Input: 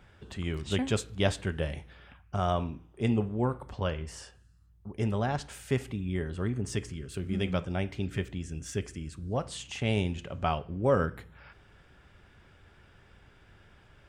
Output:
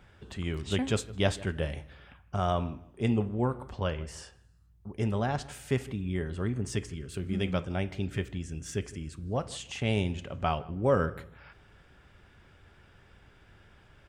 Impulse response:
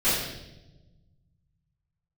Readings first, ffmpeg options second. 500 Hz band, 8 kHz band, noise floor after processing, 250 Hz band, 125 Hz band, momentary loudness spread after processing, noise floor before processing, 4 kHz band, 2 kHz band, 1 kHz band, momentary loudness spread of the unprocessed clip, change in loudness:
0.0 dB, 0.0 dB, -59 dBFS, 0.0 dB, 0.0 dB, 12 LU, -59 dBFS, 0.0 dB, 0.0 dB, 0.0 dB, 11 LU, 0.0 dB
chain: -filter_complex "[0:a]asplit=2[s0][s1];[s1]adelay=159,lowpass=f=1700:p=1,volume=0.112,asplit=2[s2][s3];[s3]adelay=159,lowpass=f=1700:p=1,volume=0.25[s4];[s0][s2][s4]amix=inputs=3:normalize=0"

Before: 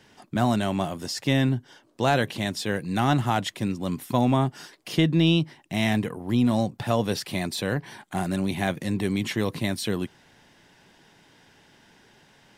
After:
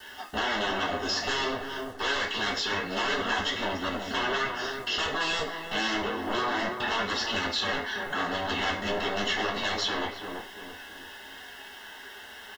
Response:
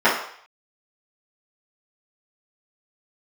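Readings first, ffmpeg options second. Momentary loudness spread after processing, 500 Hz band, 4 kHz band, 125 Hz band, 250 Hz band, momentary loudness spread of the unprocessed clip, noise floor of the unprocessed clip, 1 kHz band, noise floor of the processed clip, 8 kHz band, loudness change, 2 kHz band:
15 LU, -3.5 dB, +3.5 dB, -18.5 dB, -11.5 dB, 8 LU, -58 dBFS, -0.5 dB, -45 dBFS, -2.0 dB, -3.0 dB, +4.5 dB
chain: -filter_complex "[0:a]aresample=16000,aeval=exprs='0.0501*(abs(mod(val(0)/0.0501+3,4)-2)-1)':c=same,aresample=44100[s0];[1:a]atrim=start_sample=2205,asetrate=79380,aresample=44100[s1];[s0][s1]afir=irnorm=-1:irlink=0,acrusher=bits=7:mix=0:aa=0.000001,acrossover=split=390[s2][s3];[s3]acompressor=threshold=0.0447:ratio=2[s4];[s2][s4]amix=inputs=2:normalize=0,asuperstop=centerf=2400:order=20:qfactor=7.4,equalizer=f=420:t=o:w=2.1:g=-6,asplit=2[s5][s6];[s6]adelay=334,lowpass=f=880:p=1,volume=0.631,asplit=2[s7][s8];[s8]adelay=334,lowpass=f=880:p=1,volume=0.48,asplit=2[s9][s10];[s10]adelay=334,lowpass=f=880:p=1,volume=0.48,asplit=2[s11][s12];[s12]adelay=334,lowpass=f=880:p=1,volume=0.48,asplit=2[s13][s14];[s14]adelay=334,lowpass=f=880:p=1,volume=0.48,asplit=2[s15][s16];[s16]adelay=334,lowpass=f=880:p=1,volume=0.48[s17];[s7][s9][s11][s13][s15][s17]amix=inputs=6:normalize=0[s18];[s5][s18]amix=inputs=2:normalize=0,flanger=delay=3.4:depth=7.2:regen=-61:speed=0.27:shape=sinusoidal,lowshelf=f=100:t=q:w=3:g=7"

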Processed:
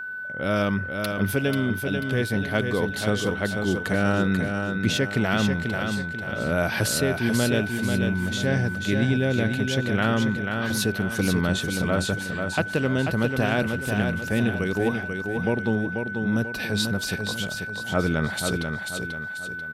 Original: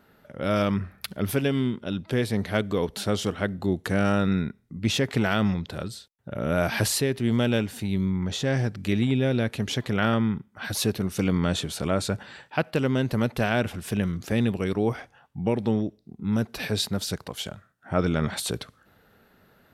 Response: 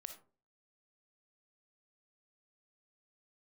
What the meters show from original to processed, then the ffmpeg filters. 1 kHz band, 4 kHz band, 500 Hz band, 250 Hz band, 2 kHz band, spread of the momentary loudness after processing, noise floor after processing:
+1.5 dB, +1.5 dB, +1.5 dB, +1.5 dB, +8.5 dB, 5 LU, -33 dBFS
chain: -af "aecho=1:1:489|978|1467|1956|2445:0.531|0.218|0.0892|0.0366|0.015,aeval=exprs='val(0)+0.0282*sin(2*PI*1500*n/s)':c=same"

